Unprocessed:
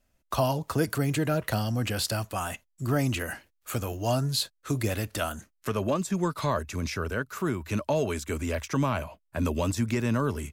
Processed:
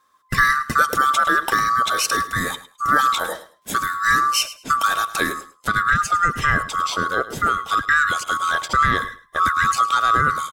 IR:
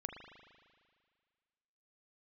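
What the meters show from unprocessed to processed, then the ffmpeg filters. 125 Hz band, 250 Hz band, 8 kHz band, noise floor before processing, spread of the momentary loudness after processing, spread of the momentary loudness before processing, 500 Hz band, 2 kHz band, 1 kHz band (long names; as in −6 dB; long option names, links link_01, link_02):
−4.5 dB, −3.5 dB, +9.0 dB, −74 dBFS, 7 LU, 7 LU, −2.0 dB, +18.0 dB, +17.0 dB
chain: -af "afftfilt=real='real(if(lt(b,960),b+48*(1-2*mod(floor(b/48),2)),b),0)':imag='imag(if(lt(b,960),b+48*(1-2*mod(floor(b/48),2)),b),0)':win_size=2048:overlap=0.75,equalizer=frequency=14000:width=1.9:gain=-6,aecho=1:1:105|210:0.168|0.0336,volume=8.5dB"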